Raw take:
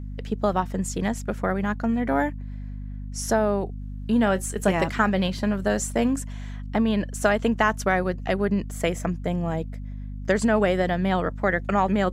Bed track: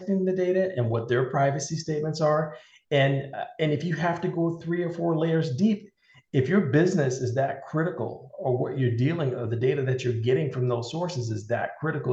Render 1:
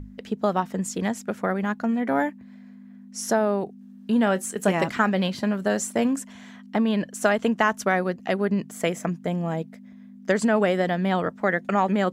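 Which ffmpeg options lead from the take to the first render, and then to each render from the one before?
ffmpeg -i in.wav -af "bandreject=frequency=50:width_type=h:width=6,bandreject=frequency=100:width_type=h:width=6,bandreject=frequency=150:width_type=h:width=6" out.wav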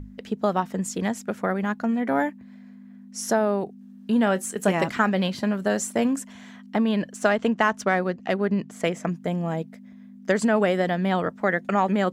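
ffmpeg -i in.wav -filter_complex "[0:a]asettb=1/sr,asplit=3[link_01][link_02][link_03];[link_01]atrim=end=7.134[link_04];[link_02]atrim=start=7.13:end=9.05,asetpts=PTS-STARTPTS,afade=type=in:duration=0.004:curve=qsin,afade=type=out:start_time=1.916:duration=0.004:curve=qsin,adynamicsmooth=sensitivity=4.5:basefreq=6800[link_05];[link_03]atrim=start=9.046[link_06];[link_04][link_05]acrossfade=duration=0.004:curve1=hsin:curve2=qsin[link_07];[link_07][link_06]acrossfade=duration=0.004:curve1=qsin:curve2=hsin" out.wav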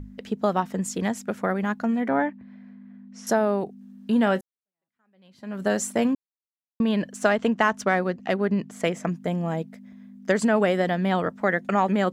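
ffmpeg -i in.wav -filter_complex "[0:a]asettb=1/sr,asplit=3[link_01][link_02][link_03];[link_01]atrim=end=2.084[link_04];[link_02]atrim=start=2.08:end=3.27,asetpts=PTS-STARTPTS,afade=type=in:duration=0.004:curve=qsin,afade=type=out:start_time=1.186:duration=0.004:curve=qsin,lowpass=3000[link_05];[link_03]atrim=start=3.266[link_06];[link_04][link_05]acrossfade=duration=0.004:curve1=hsin:curve2=qsin[link_07];[link_07][link_06]acrossfade=duration=0.004:curve1=qsin:curve2=hsin,asplit=4[link_08][link_09][link_10][link_11];[link_08]atrim=end=4.41,asetpts=PTS-STARTPTS,afade=type=out:start_time=4.406:duration=0.004:curve=hsin[link_12];[link_09]atrim=start=4.41:end=6.15,asetpts=PTS-STARTPTS,afade=type=in:duration=1.21:curve=exp,afade=type=out:start_time=1.736:duration=0.004:curve=hsin[link_13];[link_10]atrim=start=6.15:end=6.8,asetpts=PTS-STARTPTS,volume=0[link_14];[link_11]atrim=start=6.8,asetpts=PTS-STARTPTS,afade=type=in:duration=0.004:curve=hsin[link_15];[link_12][link_13][link_14][link_15]concat=n=4:v=0:a=1" out.wav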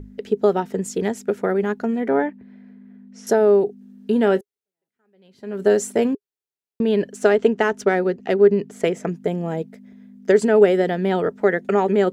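ffmpeg -i in.wav -af "equalizer=frequency=410:width=3.9:gain=15,bandreject=frequency=1100:width=7.1" out.wav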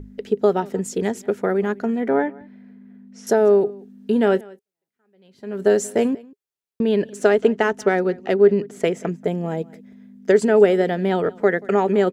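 ffmpeg -i in.wav -af "aecho=1:1:183:0.0668" out.wav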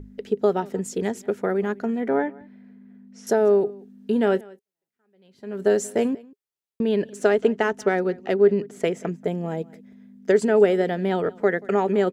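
ffmpeg -i in.wav -af "volume=-3dB" out.wav

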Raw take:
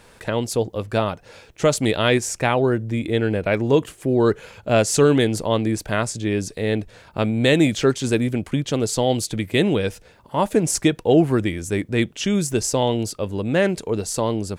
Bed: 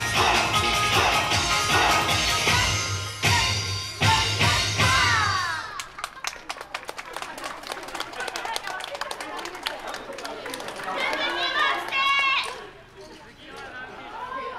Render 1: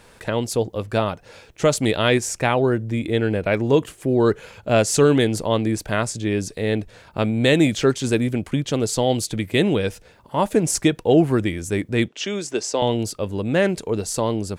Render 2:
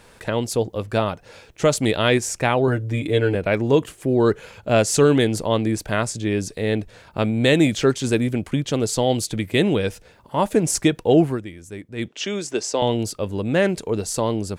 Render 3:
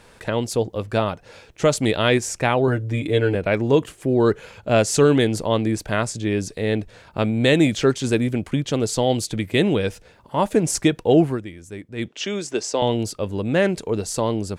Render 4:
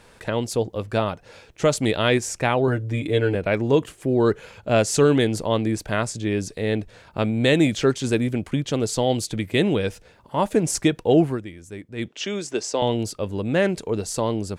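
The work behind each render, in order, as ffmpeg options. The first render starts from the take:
ffmpeg -i in.wav -filter_complex "[0:a]asettb=1/sr,asplit=3[link_01][link_02][link_03];[link_01]atrim=end=12.084[link_04];[link_02]atrim=start=12.08:end=12.82,asetpts=PTS-STARTPTS,afade=type=in:duration=0.004:curve=qsin,afade=type=out:start_time=0.736:duration=0.004:curve=qsin,acrossover=split=260 7600:gain=0.0708 1 0.0794[link_05][link_06][link_07];[link_05][link_06][link_07]amix=inputs=3:normalize=0[link_08];[link_03]atrim=start=12.816[link_09];[link_04][link_08]acrossfade=duration=0.004:curve1=hsin:curve2=qsin[link_10];[link_10][link_09]acrossfade=duration=0.004:curve1=qsin:curve2=hsin" out.wav
ffmpeg -i in.wav -filter_complex "[0:a]asettb=1/sr,asplit=3[link_01][link_02][link_03];[link_01]atrim=end=2.674[link_04];[link_02]atrim=start=2.67:end=3.35,asetpts=PTS-STARTPTS,afade=type=in:duration=0.004:curve=qsin,afade=type=out:start_time=0.676:duration=0.004:curve=qsin,aecho=1:1:6.9:0.65,atrim=end_sample=29988[link_05];[link_03]atrim=start=3.346[link_06];[link_04][link_05]acrossfade=duration=0.004:curve1=hsin:curve2=qsin[link_07];[link_07][link_06]acrossfade=duration=0.004:curve1=qsin:curve2=hsin,asplit=3[link_08][link_09][link_10];[link_08]atrim=end=11.41,asetpts=PTS-STARTPTS,afade=type=out:start_time=11.23:duration=0.18:silence=0.251189[link_11];[link_09]atrim=start=11.41:end=11.96,asetpts=PTS-STARTPTS,volume=-12dB[link_12];[link_10]atrim=start=11.96,asetpts=PTS-STARTPTS,afade=type=in:duration=0.18:silence=0.251189[link_13];[link_11][link_12][link_13]concat=n=3:v=0:a=1" out.wav
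ffmpeg -i in.wav -af "highshelf=frequency=12000:gain=-6.5" out.wav
ffmpeg -i in.wav -af "volume=-1.5dB" out.wav

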